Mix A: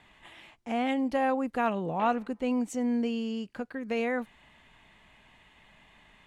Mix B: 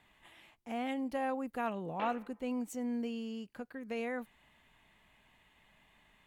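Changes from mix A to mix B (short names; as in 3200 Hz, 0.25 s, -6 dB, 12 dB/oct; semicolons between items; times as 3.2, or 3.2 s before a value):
speech -8.0 dB; master: remove LPF 8100 Hz 12 dB/oct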